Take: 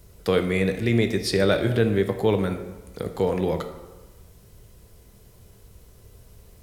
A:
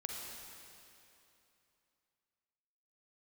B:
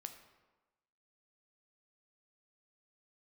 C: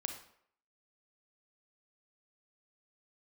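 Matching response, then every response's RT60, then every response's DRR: B; 2.9, 1.2, 0.65 s; -0.5, 6.5, 5.0 dB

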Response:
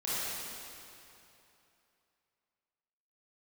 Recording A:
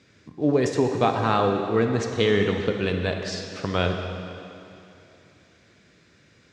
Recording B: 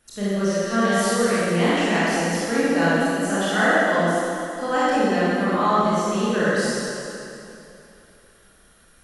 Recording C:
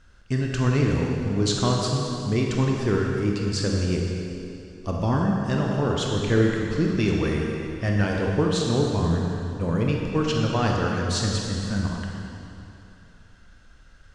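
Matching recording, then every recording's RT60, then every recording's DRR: B; 2.9, 2.9, 2.9 s; 4.0, -11.0, -1.0 dB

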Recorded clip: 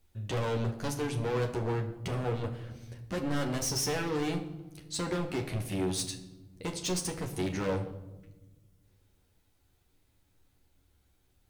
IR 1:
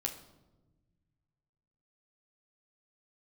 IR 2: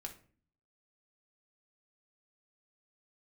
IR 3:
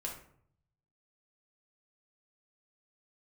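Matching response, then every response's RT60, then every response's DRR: 1; 1.1, 0.45, 0.60 s; 1.5, 2.5, -1.5 dB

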